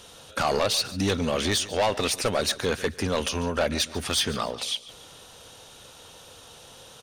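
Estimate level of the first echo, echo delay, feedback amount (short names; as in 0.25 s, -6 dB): -17.5 dB, 0.144 s, 38%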